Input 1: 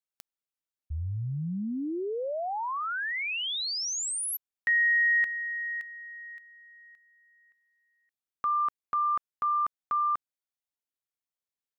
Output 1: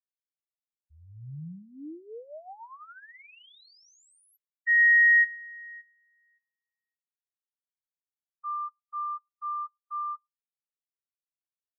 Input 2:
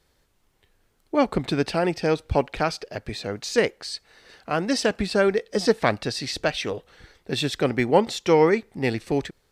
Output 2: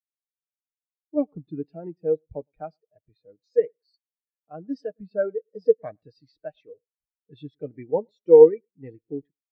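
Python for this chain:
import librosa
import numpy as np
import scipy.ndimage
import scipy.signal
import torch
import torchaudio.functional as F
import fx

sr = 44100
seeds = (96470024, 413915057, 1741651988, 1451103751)

y = x + 0.36 * np.pad(x, (int(6.5 * sr / 1000.0), 0))[:len(x)]
y = fx.echo_feedback(y, sr, ms=109, feedback_pct=25, wet_db=-19)
y = fx.spectral_expand(y, sr, expansion=2.5)
y = F.gain(torch.from_numpy(y), 3.0).numpy()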